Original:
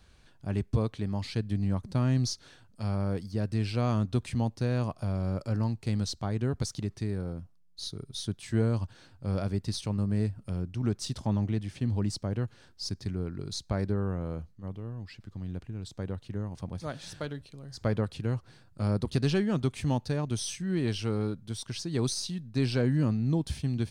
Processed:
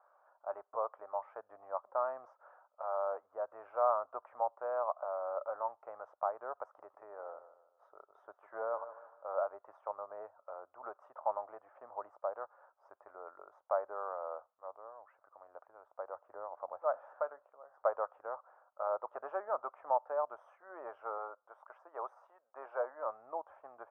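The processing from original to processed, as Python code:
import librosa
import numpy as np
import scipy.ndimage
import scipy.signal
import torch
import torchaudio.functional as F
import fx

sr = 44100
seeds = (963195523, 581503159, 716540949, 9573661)

y = fx.echo_feedback(x, sr, ms=152, feedback_pct=37, wet_db=-12.5, at=(6.65, 9.32))
y = fx.low_shelf(y, sr, hz=440.0, db=7.0, at=(16.15, 17.12))
y = fx.highpass(y, sr, hz=380.0, slope=12, at=(21.18, 23.06))
y = scipy.signal.sosfilt(scipy.signal.ellip(3, 1.0, 60, [580.0, 1300.0], 'bandpass', fs=sr, output='sos'), y)
y = y * 10.0 ** (6.0 / 20.0)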